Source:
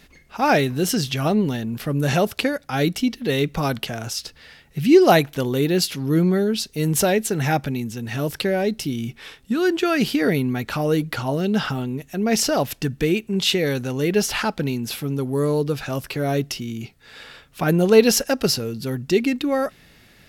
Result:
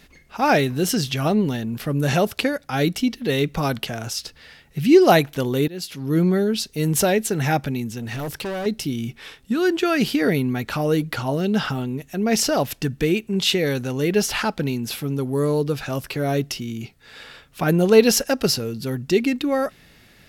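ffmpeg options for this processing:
ffmpeg -i in.wav -filter_complex "[0:a]asettb=1/sr,asplit=3[link_01][link_02][link_03];[link_01]atrim=end=7.984[link_04];[link_02]atrim=start=7.98:end=8.66,asetpts=PTS-STARTPTS,afade=type=in:duration=0.004:curve=qsin,afade=type=out:start_time=0.676:duration=0.004:curve=qsin,volume=25.5dB,asoftclip=hard,volume=-25.5dB[link_05];[link_03]atrim=start=8.656[link_06];[link_04][link_05]acrossfade=duration=0.004:curve1=hsin:curve2=qsin[link_07];[link_07][link_06]acrossfade=duration=0.004:curve1=qsin:curve2=hsin,asplit=2[link_08][link_09];[link_08]atrim=end=5.68,asetpts=PTS-STARTPTS,afade=type=out:start_time=5.676:duration=0.004:curve=hsin:silence=0.0841395[link_10];[link_09]atrim=start=5.68,asetpts=PTS-STARTPTS,afade=type=in:duration=0.54:silence=0.0841395[link_11];[link_10][link_11]concat=n=2:v=0:a=1" out.wav

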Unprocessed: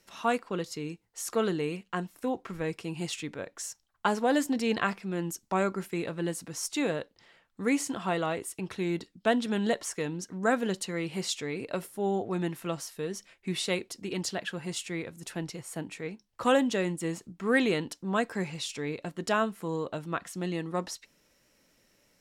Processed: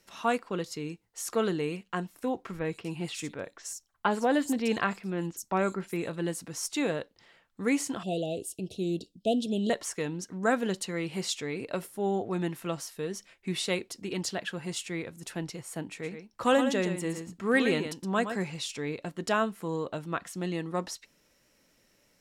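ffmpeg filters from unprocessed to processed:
ffmpeg -i in.wav -filter_complex "[0:a]asettb=1/sr,asplit=3[link_01][link_02][link_03];[link_01]atrim=end=2.594[link_04];[link_02]atrim=start=2.59:end=6.16,asetpts=PTS-STARTPTS,afade=type=in:duration=0.004:curve=qsin,afade=type=out:start_time=3.566:duration=0.004:curve=qsin,acrossover=split=4300[link_05][link_06];[link_06]adelay=60[link_07];[link_05][link_07]amix=inputs=2:normalize=0,atrim=end_sample=157437[link_08];[link_03]atrim=start=6.156[link_09];[link_04][link_08]acrossfade=duration=0.004:curve1=hsin:curve2=qsin[link_10];[link_10][link_09]acrossfade=duration=0.004:curve1=qsin:curve2=hsin,asettb=1/sr,asplit=3[link_11][link_12][link_13];[link_11]atrim=end=8.034[link_14];[link_12]atrim=start=8.03:end=9.7,asetpts=PTS-STARTPTS,afade=type=in:duration=0.004:curve=qsin,afade=type=out:start_time=1.666:duration=0.004:curve=qsin,asuperstop=centerf=1400:order=12:qfactor=0.67[link_15];[link_13]atrim=start=9.696[link_16];[link_14][link_15]acrossfade=duration=0.004:curve1=hsin:curve2=qsin[link_17];[link_17][link_16]acrossfade=duration=0.004:curve1=qsin:curve2=hsin,asettb=1/sr,asplit=3[link_18][link_19][link_20];[link_18]atrim=end=15.894[link_21];[link_19]atrim=start=15.89:end=18.43,asetpts=PTS-STARTPTS,afade=type=in:duration=0.004:curve=qsin,afade=type=out:start_time=2.536:duration=0.004:curve=qsin,aecho=1:1:117:0.376,atrim=end_sample=112014[link_22];[link_20]atrim=start=18.426[link_23];[link_21][link_22]acrossfade=duration=0.004:curve1=hsin:curve2=qsin[link_24];[link_24][link_23]acrossfade=duration=0.004:curve1=qsin:curve2=hsin" out.wav

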